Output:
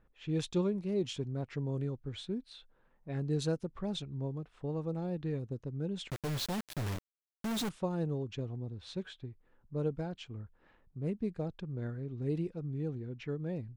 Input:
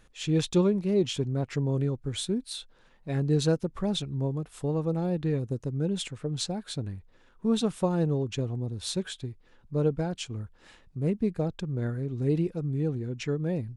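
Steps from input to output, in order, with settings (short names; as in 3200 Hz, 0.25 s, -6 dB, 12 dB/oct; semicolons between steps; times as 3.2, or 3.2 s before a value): low-pass opened by the level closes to 1400 Hz, open at -21 dBFS; 6.1–7.69 companded quantiser 2-bit; gain -8 dB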